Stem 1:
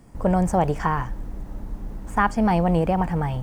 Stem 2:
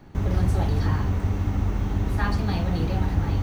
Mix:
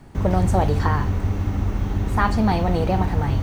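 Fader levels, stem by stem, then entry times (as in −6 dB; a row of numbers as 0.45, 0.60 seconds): −1.5, +1.5 decibels; 0.00, 0.00 seconds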